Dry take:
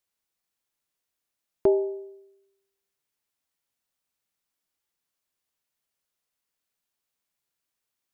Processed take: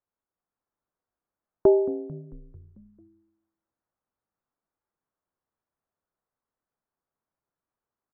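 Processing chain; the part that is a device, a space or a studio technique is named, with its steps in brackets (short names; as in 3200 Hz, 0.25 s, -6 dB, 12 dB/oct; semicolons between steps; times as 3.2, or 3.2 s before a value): frequency-shifting echo 0.222 s, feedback 60%, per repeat -120 Hz, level -17.5 dB; action camera in a waterproof case (LPF 1400 Hz 24 dB/oct; AGC gain up to 3 dB; AAC 96 kbps 44100 Hz)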